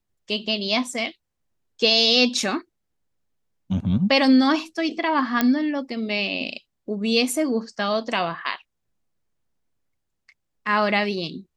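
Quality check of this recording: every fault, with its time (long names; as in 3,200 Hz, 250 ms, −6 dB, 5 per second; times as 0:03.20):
0:05.41: click −5 dBFS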